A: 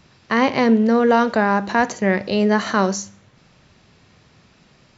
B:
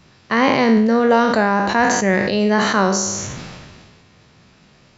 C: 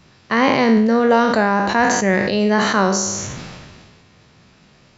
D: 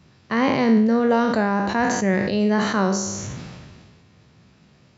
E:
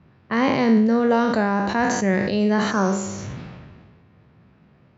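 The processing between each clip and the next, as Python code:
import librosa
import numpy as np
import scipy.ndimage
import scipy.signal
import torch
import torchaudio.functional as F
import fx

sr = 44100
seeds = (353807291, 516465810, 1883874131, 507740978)

y1 = fx.spec_trails(x, sr, decay_s=0.55)
y1 = fx.sustainer(y1, sr, db_per_s=30.0)
y2 = y1
y3 = scipy.signal.sosfilt(scipy.signal.butter(2, 58.0, 'highpass', fs=sr, output='sos'), y2)
y3 = fx.low_shelf(y3, sr, hz=330.0, db=7.5)
y3 = y3 * librosa.db_to_amplitude(-7.0)
y4 = fx.env_lowpass(y3, sr, base_hz=1900.0, full_db=-16.5)
y4 = fx.spec_repair(y4, sr, seeds[0], start_s=2.73, length_s=0.42, low_hz=1800.0, high_hz=6700.0, source='after')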